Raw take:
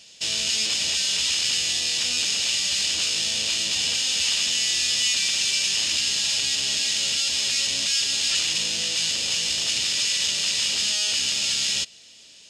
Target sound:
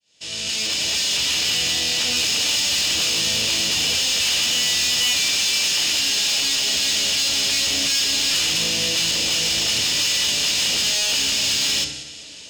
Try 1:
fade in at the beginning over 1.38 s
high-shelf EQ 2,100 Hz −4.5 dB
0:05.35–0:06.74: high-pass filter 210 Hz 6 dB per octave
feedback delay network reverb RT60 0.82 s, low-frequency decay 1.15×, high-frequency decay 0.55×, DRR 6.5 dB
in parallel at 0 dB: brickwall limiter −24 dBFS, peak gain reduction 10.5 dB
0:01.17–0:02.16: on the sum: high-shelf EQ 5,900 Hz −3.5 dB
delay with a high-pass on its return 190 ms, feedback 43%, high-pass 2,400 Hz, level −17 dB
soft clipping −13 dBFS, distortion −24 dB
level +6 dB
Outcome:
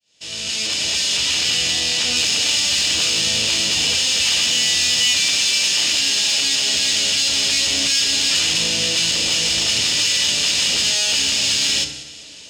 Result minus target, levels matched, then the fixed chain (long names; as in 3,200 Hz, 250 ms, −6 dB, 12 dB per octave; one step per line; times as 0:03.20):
soft clipping: distortion −11 dB
fade in at the beginning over 1.38 s
high-shelf EQ 2,100 Hz −4.5 dB
0:05.35–0:06.74: high-pass filter 210 Hz 6 dB per octave
feedback delay network reverb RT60 0.82 s, low-frequency decay 1.15×, high-frequency decay 0.55×, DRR 6.5 dB
in parallel at 0 dB: brickwall limiter −24 dBFS, peak gain reduction 10.5 dB
0:01.17–0:02.16: on the sum: high-shelf EQ 5,900 Hz −3.5 dB
delay with a high-pass on its return 190 ms, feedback 43%, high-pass 2,400 Hz, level −17 dB
soft clipping −21 dBFS, distortion −13 dB
level +6 dB